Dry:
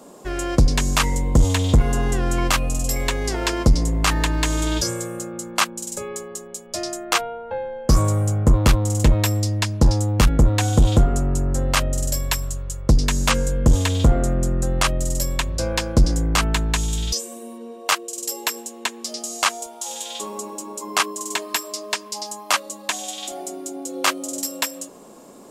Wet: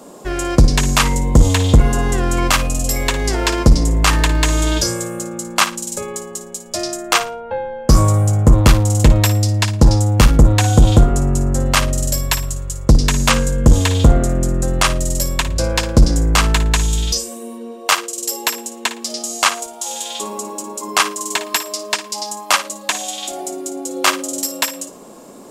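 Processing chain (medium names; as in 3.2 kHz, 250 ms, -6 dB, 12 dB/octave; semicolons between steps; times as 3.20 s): flutter echo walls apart 9.7 m, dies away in 0.27 s; trim +5 dB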